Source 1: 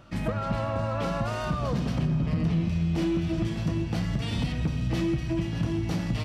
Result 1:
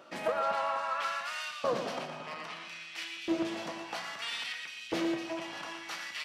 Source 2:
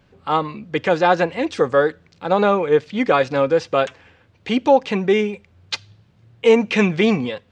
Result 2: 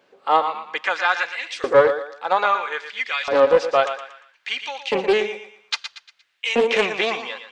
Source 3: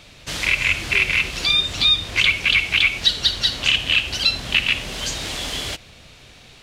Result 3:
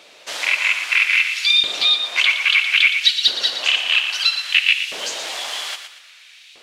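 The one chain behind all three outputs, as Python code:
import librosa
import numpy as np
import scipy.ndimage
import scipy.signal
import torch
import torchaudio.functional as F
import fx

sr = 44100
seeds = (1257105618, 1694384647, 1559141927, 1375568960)

y = fx.peak_eq(x, sr, hz=76.0, db=-7.0, octaves=1.1)
y = fx.echo_feedback(y, sr, ms=117, feedback_pct=37, wet_db=-9)
y = fx.filter_lfo_highpass(y, sr, shape='saw_up', hz=0.61, low_hz=410.0, high_hz=2700.0, q=1.4)
y = fx.doppler_dist(y, sr, depth_ms=0.23)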